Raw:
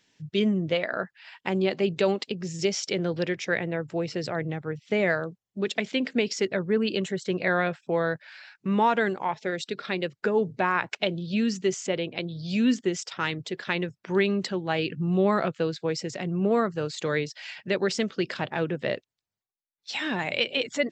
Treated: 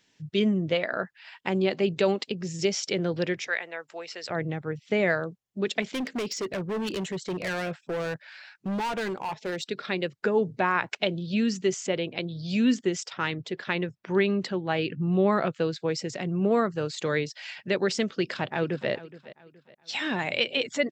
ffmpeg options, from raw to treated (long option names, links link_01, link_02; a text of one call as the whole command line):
ffmpeg -i in.wav -filter_complex "[0:a]asplit=3[link_01][link_02][link_03];[link_01]afade=type=out:start_time=3.46:duration=0.02[link_04];[link_02]highpass=830,afade=type=in:start_time=3.46:duration=0.02,afade=type=out:start_time=4.29:duration=0.02[link_05];[link_03]afade=type=in:start_time=4.29:duration=0.02[link_06];[link_04][link_05][link_06]amix=inputs=3:normalize=0,asettb=1/sr,asplit=3[link_07][link_08][link_09];[link_07]atrim=end=5.824[link_10];[link_08]atrim=start=5.82:end=9.63,asetpts=PTS-STARTPTS,afade=type=in:duration=0.004:curve=qsin,afade=type=out:start_time=3.806:duration=0.004:curve=qsin,asoftclip=type=hard:threshold=-27dB[link_11];[link_09]atrim=start=9.626[link_12];[link_10][link_11]acrossfade=duration=0.004:curve1=hsin:curve2=qsin[link_13];[link_13][link_12]acrossfade=duration=0.004:curve1=qsin:curve2=hsin,asettb=1/sr,asplit=3[link_14][link_15][link_16];[link_14]atrim=end=13.084[link_17];[link_15]atrim=start=13.08:end=15.46,asetpts=PTS-STARTPTS,afade=type=in:duration=0.004:curve=qsin,afade=type=out:start_time=2.376:duration=0.004:curve=qsin,highshelf=frequency=6400:gain=-10[link_18];[link_16]atrim=start=15.456[link_19];[link_17][link_18]acrossfade=duration=0.004:curve1=hsin:curve2=qsin[link_20];[link_20][link_19]acrossfade=duration=0.004:curve1=qsin:curve2=hsin,asplit=2[link_21][link_22];[link_22]afade=type=in:start_time=18.2:duration=0.01,afade=type=out:start_time=18.9:duration=0.01,aecho=0:1:420|840|1260:0.141254|0.0494388|0.0173036[link_23];[link_21][link_23]amix=inputs=2:normalize=0" out.wav